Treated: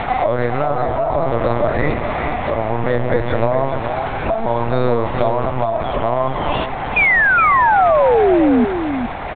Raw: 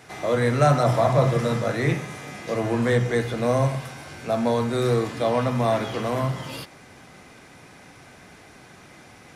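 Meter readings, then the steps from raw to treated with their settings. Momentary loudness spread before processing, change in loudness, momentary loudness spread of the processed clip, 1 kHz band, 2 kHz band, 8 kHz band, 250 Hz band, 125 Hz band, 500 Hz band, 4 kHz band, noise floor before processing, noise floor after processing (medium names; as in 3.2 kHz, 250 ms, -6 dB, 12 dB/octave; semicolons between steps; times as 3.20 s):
14 LU, +6.5 dB, 9 LU, +12.0 dB, +14.5 dB, under -40 dB, +6.5 dB, +0.5 dB, +7.0 dB, +2.0 dB, -49 dBFS, -24 dBFS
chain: peaking EQ 800 Hz +13 dB 1.1 oct; in parallel at 0 dB: upward compressor, threshold -22 dBFS; on the sum: peak limiter -2.5 dBFS, peak gain reduction 9.5 dB; compression 6:1, threshold -21 dBFS, peak gain reduction 13.5 dB; tremolo 0.61 Hz, depth 32%; LPC vocoder at 8 kHz pitch kept; distance through air 55 m; painted sound fall, 6.96–8.65 s, 230–2500 Hz -20 dBFS; on a send: delay 416 ms -8 dB; on the sum: trim +7 dB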